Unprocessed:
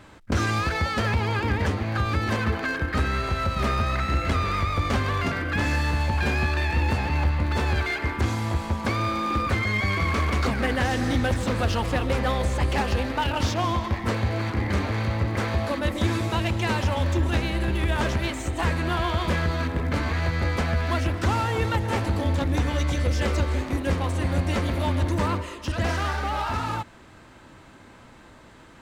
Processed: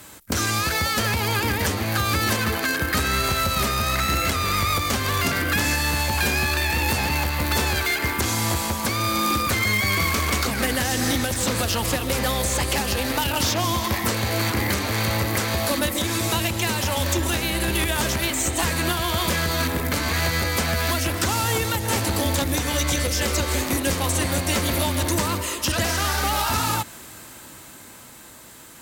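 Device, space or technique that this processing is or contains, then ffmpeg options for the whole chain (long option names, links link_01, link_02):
FM broadcast chain: -filter_complex "[0:a]highpass=frequency=77:poles=1,dynaudnorm=framelen=120:gausssize=31:maxgain=5dB,acrossover=split=310|3500|7500[link_01][link_02][link_03][link_04];[link_01]acompressor=threshold=-24dB:ratio=4[link_05];[link_02]acompressor=threshold=-24dB:ratio=4[link_06];[link_03]acompressor=threshold=-39dB:ratio=4[link_07];[link_04]acompressor=threshold=-58dB:ratio=4[link_08];[link_05][link_06][link_07][link_08]amix=inputs=4:normalize=0,aemphasis=mode=production:type=50fm,alimiter=limit=-14.5dB:level=0:latency=1:release=420,asoftclip=type=hard:threshold=-17dB,lowpass=frequency=15000:width=0.5412,lowpass=frequency=15000:width=1.3066,aemphasis=mode=production:type=50fm,volume=2dB"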